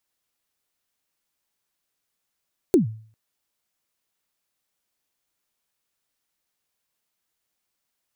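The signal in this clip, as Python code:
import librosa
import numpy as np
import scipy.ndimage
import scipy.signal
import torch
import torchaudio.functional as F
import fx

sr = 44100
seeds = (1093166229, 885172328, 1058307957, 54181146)

y = fx.drum_kick(sr, seeds[0], length_s=0.4, level_db=-9.5, start_hz=410.0, end_hz=110.0, sweep_ms=125.0, decay_s=0.48, click=True)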